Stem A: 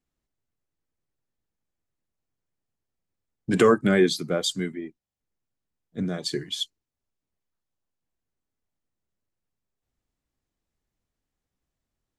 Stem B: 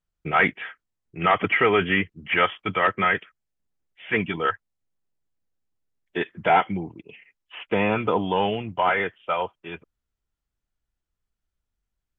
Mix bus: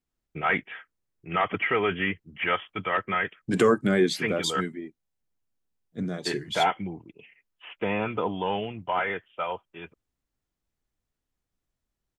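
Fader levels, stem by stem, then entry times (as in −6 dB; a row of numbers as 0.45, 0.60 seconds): −2.5, −5.5 decibels; 0.00, 0.10 seconds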